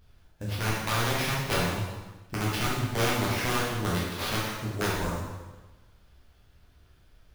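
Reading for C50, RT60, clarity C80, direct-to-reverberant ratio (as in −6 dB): −0.5 dB, 1.2 s, 2.5 dB, −6.0 dB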